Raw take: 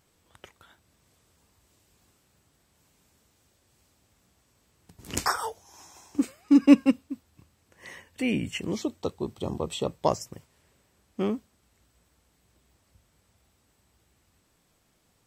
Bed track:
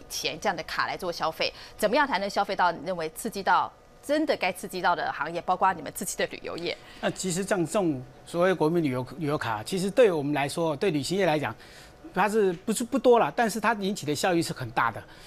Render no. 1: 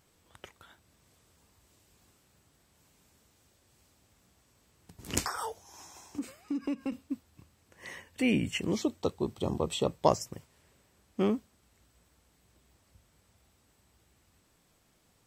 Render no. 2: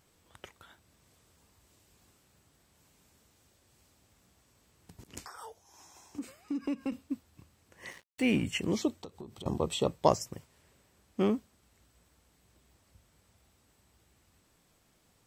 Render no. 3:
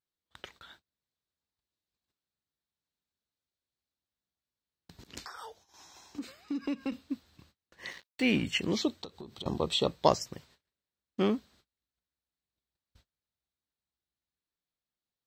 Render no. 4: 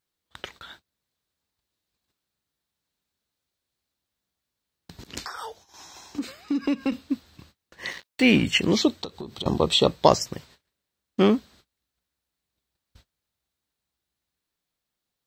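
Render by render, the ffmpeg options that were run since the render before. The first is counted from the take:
-filter_complex "[0:a]asettb=1/sr,asplit=3[s0][s1][s2];[s0]atrim=end=5.254[s3];[s1]atrim=start=5.25:end=6.92,asetpts=PTS-STARTPTS,afade=t=in:d=0.004:c=qsin,afade=t=out:st=1.666:d=0.004:c=qsin,acompressor=threshold=0.0282:ratio=6:attack=3.2:release=140:knee=1:detection=peak[s4];[s2]atrim=start=6.916[s5];[s3][s4]acrossfade=d=0.004:c1=hsin:c2=qsin[s6];[s6][s5]acrossfade=d=0.004:c1=qsin:c2=hsin"
-filter_complex "[0:a]asplit=3[s0][s1][s2];[s0]afade=t=out:st=7.9:d=0.02[s3];[s1]aeval=exprs='sgn(val(0))*max(abs(val(0))-0.00422,0)':c=same,afade=t=in:st=7.9:d=0.02,afade=t=out:st=8.43:d=0.02[s4];[s2]afade=t=in:st=8.43:d=0.02[s5];[s3][s4][s5]amix=inputs=3:normalize=0,asettb=1/sr,asplit=3[s6][s7][s8];[s6]atrim=end=8.974[s9];[s7]atrim=start=8.97:end=9.46,asetpts=PTS-STARTPTS,afade=t=in:d=0.004:c=qsin,afade=t=out:st=0.486:d=0.004:c=qsin,acompressor=threshold=0.01:ratio=20:attack=3.2:release=140:knee=1:detection=peak[s10];[s8]atrim=start=9.456[s11];[s9][s10]acrossfade=d=0.004:c1=hsin:c2=qsin[s12];[s12][s11]acrossfade=d=0.004:c1=qsin:c2=hsin,asplit=2[s13][s14];[s13]atrim=end=5.04,asetpts=PTS-STARTPTS,afade=t=out:st=5.036:d=0.004:c=hsin:silence=0.105925[s15];[s14]atrim=start=5.04,asetpts=PTS-STARTPTS,afade=t=in:d=1.73:silence=0.105925[s16];[s15][s16]concat=n=2:v=0:a=1"
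-af "agate=range=0.0316:threshold=0.001:ratio=16:detection=peak,equalizer=f=100:t=o:w=0.67:g=-4,equalizer=f=1600:t=o:w=0.67:g=4,equalizer=f=4000:t=o:w=0.67:g=11,equalizer=f=10000:t=o:w=0.67:g=-9"
-af "volume=2.82,alimiter=limit=0.794:level=0:latency=1"

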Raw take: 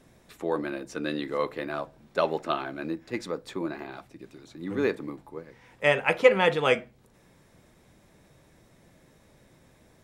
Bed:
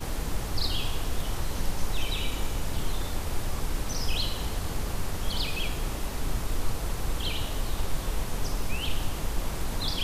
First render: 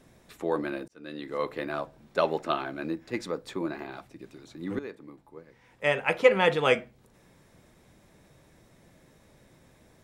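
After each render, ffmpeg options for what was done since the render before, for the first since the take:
-filter_complex "[0:a]asplit=3[s0][s1][s2];[s0]atrim=end=0.88,asetpts=PTS-STARTPTS,afade=t=out:st=0.876:d=0.004:c=hsin[s3];[s1]atrim=start=0.88:end=4.79,asetpts=PTS-STARTPTS,afade=t=in:d=0.69,afade=t=out:st=3.906:d=0.004:c=hsin:silence=0.158489[s4];[s2]atrim=start=4.79,asetpts=PTS-STARTPTS,afade=t=in:d=1.75:silence=0.158489[s5];[s3][s4][s5]concat=n=3:v=0:a=1"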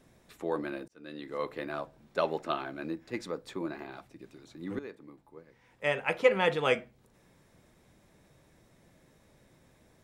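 -af "volume=0.631"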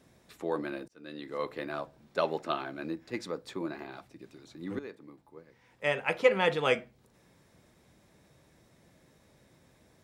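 -af "highpass=45,equalizer=f=4700:t=o:w=0.77:g=2.5"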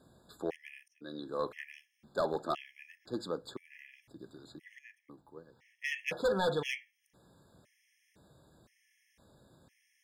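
-af "asoftclip=type=hard:threshold=0.0562,afftfilt=real='re*gt(sin(2*PI*0.98*pts/sr)*(1-2*mod(floor(b*sr/1024/1700),2)),0)':imag='im*gt(sin(2*PI*0.98*pts/sr)*(1-2*mod(floor(b*sr/1024/1700),2)),0)':win_size=1024:overlap=0.75"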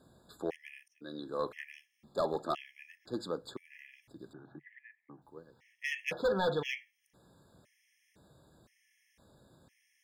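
-filter_complex "[0:a]asettb=1/sr,asplit=3[s0][s1][s2];[s0]atrim=end=1.634[s3];[s1]atrim=start=1.63:end=2.45,asetpts=PTS-STARTPTS,afade=t=in:d=0.004:c=qsin,afade=t=out:st=0.816:d=0.004:c=qsin,asuperstop=centerf=1500:order=4:qfactor=6.5[s4];[s2]atrim=start=2.446[s5];[s3][s4]acrossfade=d=0.004:c1=hsin:c2=qsin[s6];[s6][s5]acrossfade=d=0.004:c1=qsin:c2=hsin,asettb=1/sr,asplit=3[s7][s8][s9];[s7]atrim=end=4.334[s10];[s8]atrim=start=4.33:end=5.22,asetpts=PTS-STARTPTS,afade=t=in:d=0.004:c=qsin,afade=t=out:st=0.886:d=0.004:c=qsin,highpass=130,equalizer=f=140:t=q:w=4:g=7,equalizer=f=510:t=q:w=4:g=-4,equalizer=f=800:t=q:w=4:g=7,equalizer=f=1600:t=q:w=4:g=5,lowpass=f=2000:w=0.5412,lowpass=f=2000:w=1.3066[s11];[s9]atrim=start=5.216[s12];[s10][s11]acrossfade=d=0.004:c1=hsin:c2=qsin[s13];[s13][s12]acrossfade=d=0.004:c1=qsin:c2=hsin,asettb=1/sr,asplit=3[s14][s15][s16];[s14]atrim=end=6.134[s17];[s15]atrim=start=6.13:end=6.77,asetpts=PTS-STARTPTS,afade=t=in:d=0.004:c=qsin,afade=t=out:st=0.636:d=0.004:c=qsin,equalizer=f=9400:w=1.5:g=-14.5[s18];[s16]atrim=start=6.766[s19];[s17][s18]acrossfade=d=0.004:c1=hsin:c2=qsin[s20];[s20][s19]acrossfade=d=0.004:c1=qsin:c2=hsin"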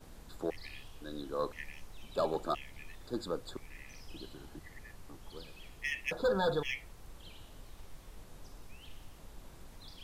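-filter_complex "[1:a]volume=0.0794[s0];[0:a][s0]amix=inputs=2:normalize=0"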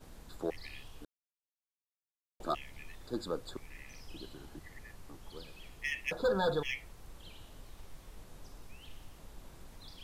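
-filter_complex "[0:a]asplit=3[s0][s1][s2];[s0]atrim=end=1.05,asetpts=PTS-STARTPTS,afade=t=out:st=1.046:d=0.004:c=hsin[s3];[s1]atrim=start=1.05:end=2.4,asetpts=PTS-STARTPTS,volume=0[s4];[s2]atrim=start=2.4,asetpts=PTS-STARTPTS,afade=t=in:d=0.004:c=hsin[s5];[s3][s4][s5]concat=n=3:v=0:a=1"

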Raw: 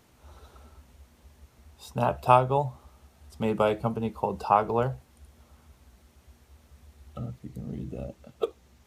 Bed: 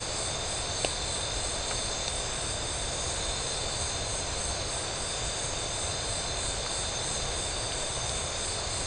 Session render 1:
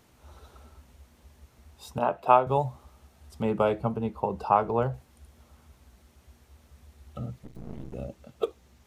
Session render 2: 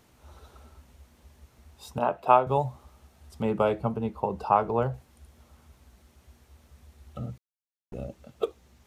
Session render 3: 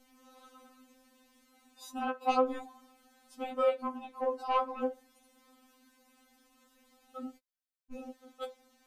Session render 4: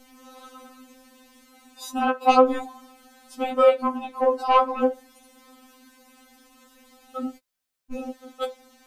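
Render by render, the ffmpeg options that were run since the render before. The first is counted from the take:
-filter_complex "[0:a]asettb=1/sr,asplit=3[s0][s1][s2];[s0]atrim=end=1.984[s3];[s1]atrim=start=1.98:end=2.47,asetpts=PTS-STARTPTS,afade=t=in:d=0.004:c=qsin,afade=t=out:st=0.486:d=0.004:c=qsin,acrossover=split=190 2900:gain=0.0708 1 0.224[s4][s5][s6];[s4][s5][s6]amix=inputs=3:normalize=0[s7];[s2]atrim=start=2.466[s8];[s3][s7]acrossfade=d=0.004:c1=hsin:c2=qsin[s9];[s9][s8]acrossfade=d=0.004:c1=qsin:c2=hsin,asettb=1/sr,asplit=3[s10][s11][s12];[s10]atrim=end=3.424[s13];[s11]atrim=start=3.42:end=4.94,asetpts=PTS-STARTPTS,afade=t=in:d=0.004:c=qsin,afade=t=out:st=1.516:d=0.004:c=qsin,highshelf=f=3300:g=-9[s14];[s12]atrim=start=4.936[s15];[s13][s14]acrossfade=d=0.004:c1=hsin:c2=qsin[s16];[s16][s15]acrossfade=d=0.004:c1=qsin:c2=hsin,asettb=1/sr,asplit=3[s17][s18][s19];[s17]atrim=end=7.444[s20];[s18]atrim=start=7.44:end=7.94,asetpts=PTS-STARTPTS,afade=t=in:d=0.004:c=qsin,afade=t=out:st=0.496:d=0.004:c=qsin,aeval=exprs='max(val(0),0)':c=same[s21];[s19]atrim=start=7.936[s22];[s20][s21]acrossfade=d=0.004:c1=hsin:c2=qsin[s23];[s23][s22]acrossfade=d=0.004:c1=qsin:c2=hsin"
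-filter_complex "[0:a]asplit=3[s0][s1][s2];[s0]atrim=end=7.38,asetpts=PTS-STARTPTS,afade=t=out:st=7.376:d=0.004:c=hsin[s3];[s1]atrim=start=7.38:end=7.92,asetpts=PTS-STARTPTS,volume=0[s4];[s2]atrim=start=7.92,asetpts=PTS-STARTPTS,afade=t=in:d=0.004:c=hsin[s5];[s3][s4][s5]concat=n=3:v=0:a=1"
-af "asoftclip=type=tanh:threshold=0.237,afftfilt=real='re*3.46*eq(mod(b,12),0)':imag='im*3.46*eq(mod(b,12),0)':win_size=2048:overlap=0.75"
-af "volume=3.76"

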